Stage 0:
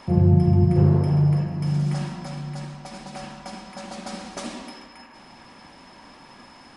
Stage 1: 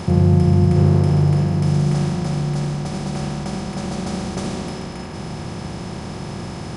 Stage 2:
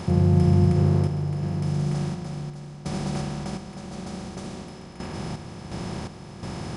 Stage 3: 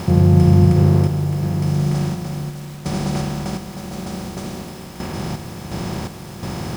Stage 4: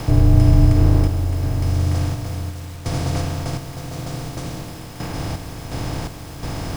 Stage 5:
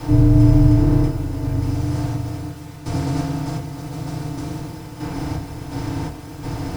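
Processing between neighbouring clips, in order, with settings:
compressor on every frequency bin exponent 0.4
sample-and-hold tremolo 2.8 Hz, depth 80%; level −2.5 dB
bit reduction 8 bits; level +6.5 dB
frequency shifter −59 Hz
feedback delay network reverb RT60 0.3 s, low-frequency decay 1.2×, high-frequency decay 0.55×, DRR −7 dB; level −9.5 dB

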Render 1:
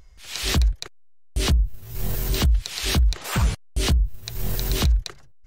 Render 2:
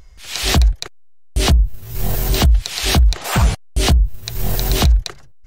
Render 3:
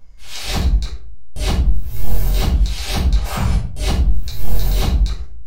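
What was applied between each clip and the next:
dynamic equaliser 730 Hz, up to +7 dB, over −50 dBFS, Q 2.9; level +6.5 dB
camcorder AGC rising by 11 dB per second; rectangular room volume 430 cubic metres, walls furnished, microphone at 5.3 metres; level −14 dB

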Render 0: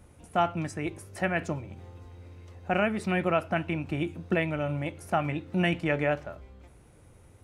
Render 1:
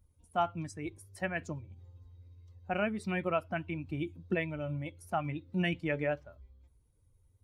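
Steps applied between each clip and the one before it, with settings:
spectral dynamics exaggerated over time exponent 1.5
level −3.5 dB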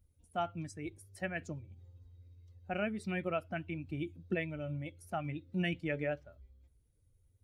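parametric band 1,000 Hz −9.5 dB 0.49 octaves
level −2.5 dB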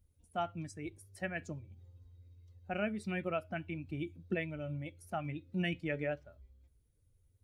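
tuned comb filter 210 Hz, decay 0.24 s, harmonics all, mix 30%
level +2 dB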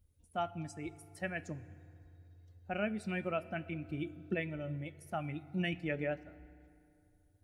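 feedback delay network reverb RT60 2.8 s, high-frequency decay 0.55×, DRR 16 dB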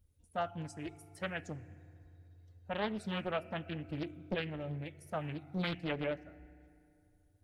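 highs frequency-modulated by the lows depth 0.81 ms

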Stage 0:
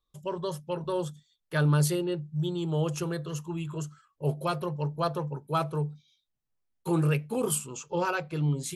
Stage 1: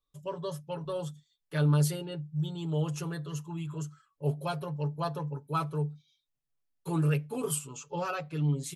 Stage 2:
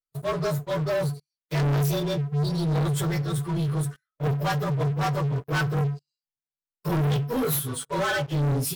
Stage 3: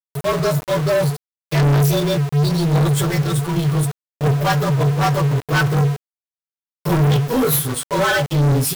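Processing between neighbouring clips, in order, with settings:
comb filter 7 ms, depth 71%; level −5.5 dB
partials spread apart or drawn together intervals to 109%; leveller curve on the samples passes 5; level −2.5 dB
hum removal 159.1 Hz, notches 12; centre clipping without the shift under −32.5 dBFS; level +8.5 dB

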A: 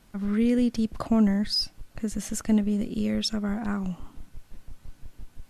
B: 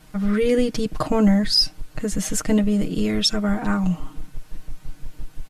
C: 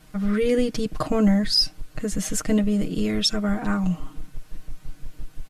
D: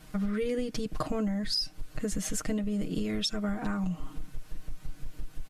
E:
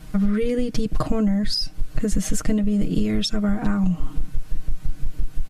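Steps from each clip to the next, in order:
comb filter 6.5 ms, depth 94%; level +6 dB
notch filter 880 Hz, Q 12; level −2 dB
downward compressor 10 to 1, threshold −27 dBFS, peak gain reduction 13.5 dB
low-shelf EQ 220 Hz +9.5 dB; level +5 dB

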